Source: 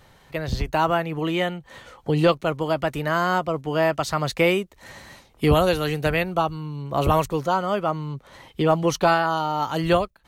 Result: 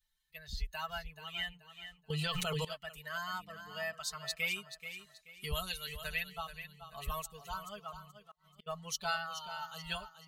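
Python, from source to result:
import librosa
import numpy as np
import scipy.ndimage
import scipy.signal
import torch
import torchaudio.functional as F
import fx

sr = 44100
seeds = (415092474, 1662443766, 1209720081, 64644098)

y = fx.bin_expand(x, sr, power=1.5)
y = fx.tone_stack(y, sr, knobs='10-0-10')
y = fx.echo_feedback(y, sr, ms=431, feedback_pct=31, wet_db=-10.5)
y = fx.dmg_buzz(y, sr, base_hz=100.0, harmonics=3, level_db=-55.0, tilt_db=-4, odd_only=False, at=(3.3, 3.92), fade=0.02)
y = fx.gate_flip(y, sr, shuts_db=-37.0, range_db=-33, at=(8.1, 8.66), fade=0.02)
y = fx.peak_eq(y, sr, hz=750.0, db=-5.5, octaves=2.2)
y = y + 0.92 * np.pad(y, (int(4.6 * sr / 1000.0), 0))[:len(y)]
y = fx.env_flatten(y, sr, amount_pct=100, at=(2.1, 2.65))
y = y * librosa.db_to_amplitude(-5.5)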